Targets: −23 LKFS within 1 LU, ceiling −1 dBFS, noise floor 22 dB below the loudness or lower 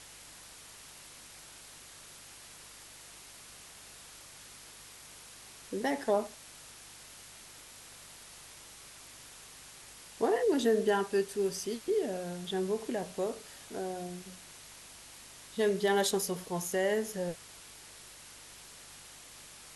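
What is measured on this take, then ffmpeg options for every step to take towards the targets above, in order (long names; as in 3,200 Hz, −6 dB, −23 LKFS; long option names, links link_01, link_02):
mains hum 50 Hz; hum harmonics up to 150 Hz; level of the hum −65 dBFS; background noise floor −52 dBFS; target noise floor −55 dBFS; integrated loudness −32.5 LKFS; sample peak −16.5 dBFS; target loudness −23.0 LKFS
→ -af "bandreject=frequency=50:width_type=h:width=4,bandreject=frequency=100:width_type=h:width=4,bandreject=frequency=150:width_type=h:width=4"
-af "afftdn=noise_reduction=6:noise_floor=-52"
-af "volume=9.5dB"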